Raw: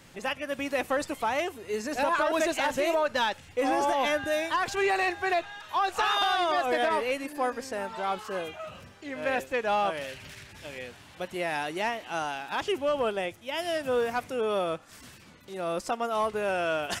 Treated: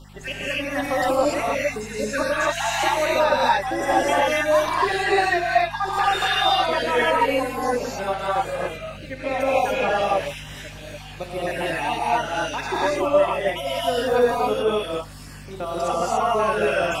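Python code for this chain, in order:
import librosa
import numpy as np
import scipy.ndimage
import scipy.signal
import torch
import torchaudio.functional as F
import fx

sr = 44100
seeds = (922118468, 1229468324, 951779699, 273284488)

p1 = fx.spec_dropout(x, sr, seeds[0], share_pct=54)
p2 = fx.level_steps(p1, sr, step_db=12)
p3 = p1 + (p2 * 10.0 ** (-2.0 / 20.0))
p4 = fx.add_hum(p3, sr, base_hz=50, snr_db=14)
y = fx.rev_gated(p4, sr, seeds[1], gate_ms=310, shape='rising', drr_db=-7.0)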